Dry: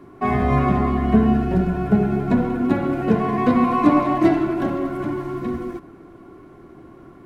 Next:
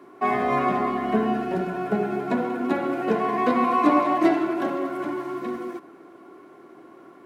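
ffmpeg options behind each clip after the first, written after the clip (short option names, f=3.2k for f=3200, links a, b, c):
-af "highpass=350"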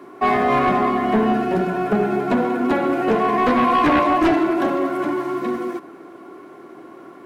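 -af "aeval=exprs='0.473*sin(PI/2*2.51*val(0)/0.473)':c=same,volume=-5dB"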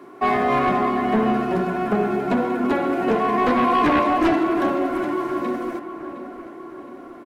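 -filter_complex "[0:a]asplit=2[a][b];[b]adelay=713,lowpass=f=2.7k:p=1,volume=-12dB,asplit=2[c][d];[d]adelay=713,lowpass=f=2.7k:p=1,volume=0.53,asplit=2[e][f];[f]adelay=713,lowpass=f=2.7k:p=1,volume=0.53,asplit=2[g][h];[h]adelay=713,lowpass=f=2.7k:p=1,volume=0.53,asplit=2[i][j];[j]adelay=713,lowpass=f=2.7k:p=1,volume=0.53,asplit=2[k][l];[l]adelay=713,lowpass=f=2.7k:p=1,volume=0.53[m];[a][c][e][g][i][k][m]amix=inputs=7:normalize=0,volume=-2dB"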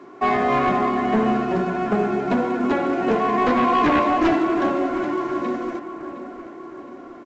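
-ar 16000 -c:a pcm_mulaw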